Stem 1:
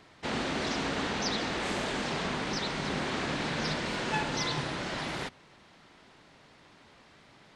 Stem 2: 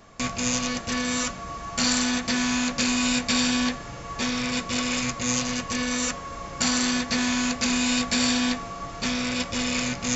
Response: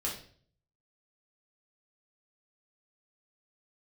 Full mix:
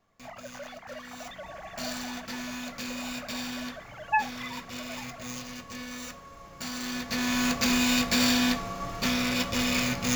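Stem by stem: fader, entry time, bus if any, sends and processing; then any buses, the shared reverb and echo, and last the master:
-2.0 dB, 0.00 s, no send, formants replaced by sine waves; spectral contrast expander 1.5:1
1.00 s -22 dB -> 1.46 s -13.5 dB -> 6.71 s -13.5 dB -> 7.47 s -1.5 dB, 0.00 s, send -12.5 dB, median filter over 5 samples; treble shelf 8.9 kHz +5.5 dB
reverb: on, RT60 0.50 s, pre-delay 5 ms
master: none

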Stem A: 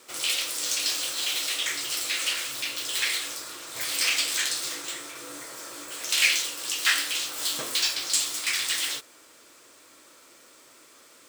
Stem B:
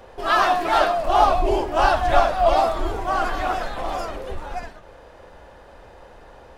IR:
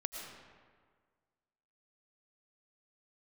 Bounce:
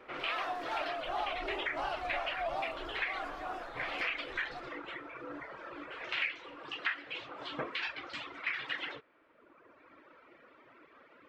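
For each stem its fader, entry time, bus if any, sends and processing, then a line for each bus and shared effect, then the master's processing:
+2.0 dB, 0.00 s, no send, reverb removal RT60 1.6 s; low-pass 2.3 kHz 24 dB/octave
-16.5 dB, 0.00 s, no send, tone controls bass -9 dB, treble -5 dB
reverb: none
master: compression 8:1, threshold -31 dBFS, peak gain reduction 12.5 dB

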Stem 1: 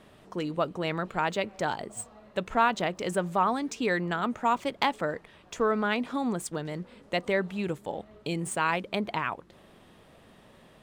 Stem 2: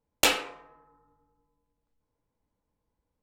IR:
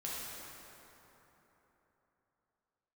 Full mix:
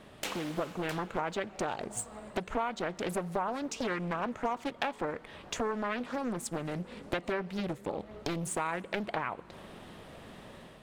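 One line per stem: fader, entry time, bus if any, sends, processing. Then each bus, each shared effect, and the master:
+1.5 dB, 0.00 s, send -21.5 dB, no echo send, compression 4:1, threshold -39 dBFS, peak gain reduction 17.5 dB
-11.5 dB, 0.00 s, send -4.5 dB, echo send -9.5 dB, compression 1.5:1, threshold -37 dBFS, peak gain reduction 7.5 dB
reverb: on, RT60 3.7 s, pre-delay 3 ms
echo: delay 660 ms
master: level rider gain up to 4.5 dB; loudspeaker Doppler distortion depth 0.86 ms

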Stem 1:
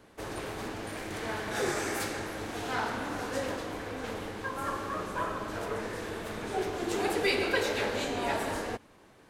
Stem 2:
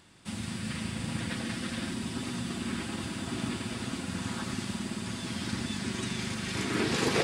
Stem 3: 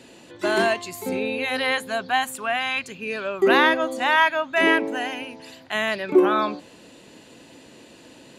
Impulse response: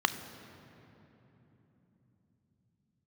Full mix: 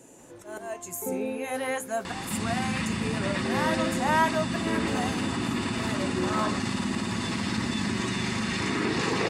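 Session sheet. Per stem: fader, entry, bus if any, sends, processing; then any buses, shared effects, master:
-20.0 dB, 0.00 s, no send, none
-3.5 dB, 2.05 s, send -16 dB, low-pass 7.5 kHz 12 dB/octave; level flattener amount 70%
+0.5 dB, 0.00 s, no send, FFT filter 860 Hz 0 dB, 4.5 kHz -15 dB, 6.4 kHz +7 dB; slow attack 353 ms; flange 0.39 Hz, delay 6 ms, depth 9 ms, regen -51%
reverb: on, RT60 3.5 s, pre-delay 3 ms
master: none

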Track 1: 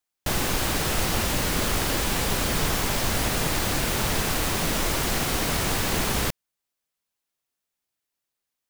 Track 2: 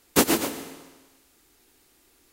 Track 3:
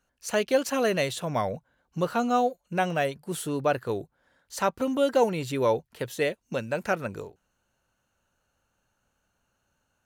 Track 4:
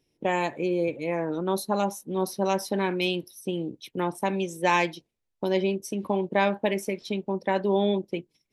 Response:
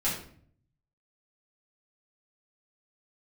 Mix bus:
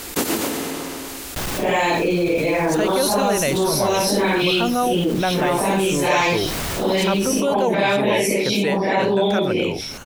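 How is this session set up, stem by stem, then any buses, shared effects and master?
-18.5 dB, 1.10 s, no send, hard clipper -24 dBFS, distortion -10 dB
-10.0 dB, 0.00 s, no send, none
-2.5 dB, 2.45 s, no send, none
+1.0 dB, 1.45 s, no send, phase randomisation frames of 200 ms; harmonic-percussive split percussive +9 dB; peaking EQ 4.5 kHz +3.5 dB 0.77 oct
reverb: none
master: level flattener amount 70%

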